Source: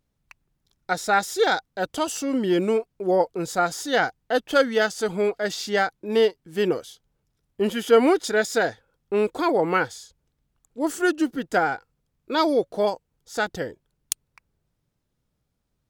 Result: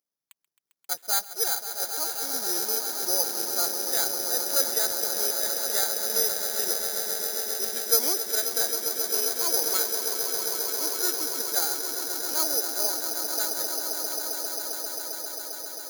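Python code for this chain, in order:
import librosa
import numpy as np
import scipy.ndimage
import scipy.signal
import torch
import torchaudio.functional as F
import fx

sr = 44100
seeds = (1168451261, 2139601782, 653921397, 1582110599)

y = scipy.signal.sosfilt(scipy.signal.butter(2, 390.0, 'highpass', fs=sr, output='sos'), x)
y = fx.echo_swell(y, sr, ms=133, loudest=8, wet_db=-10.0)
y = (np.kron(scipy.signal.resample_poly(y, 1, 8), np.eye(8)[0]) * 8)[:len(y)]
y = y * librosa.db_to_amplitude(-14.0)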